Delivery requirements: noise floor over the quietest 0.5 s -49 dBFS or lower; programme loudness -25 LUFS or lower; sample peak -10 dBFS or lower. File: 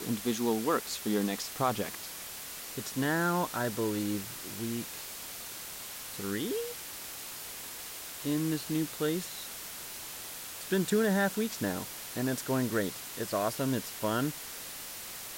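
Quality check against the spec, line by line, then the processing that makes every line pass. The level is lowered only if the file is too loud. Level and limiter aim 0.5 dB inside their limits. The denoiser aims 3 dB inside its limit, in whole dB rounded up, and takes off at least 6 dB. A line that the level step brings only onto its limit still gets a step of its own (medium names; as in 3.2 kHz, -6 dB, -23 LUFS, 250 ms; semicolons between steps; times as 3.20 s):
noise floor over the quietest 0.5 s -43 dBFS: fail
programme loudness -33.5 LUFS: pass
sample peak -16.0 dBFS: pass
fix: noise reduction 9 dB, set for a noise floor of -43 dBFS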